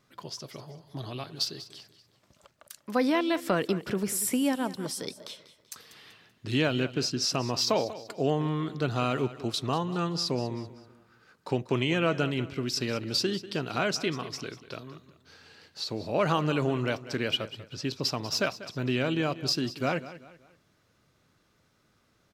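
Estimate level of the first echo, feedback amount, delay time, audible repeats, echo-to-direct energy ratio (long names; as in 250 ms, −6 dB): −15.5 dB, 38%, 192 ms, 3, −15.0 dB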